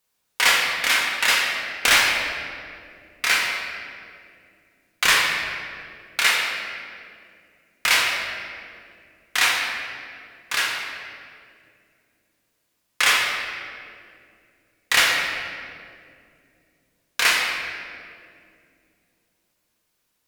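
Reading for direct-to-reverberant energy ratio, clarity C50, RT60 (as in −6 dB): −3.0 dB, 1.5 dB, 2.4 s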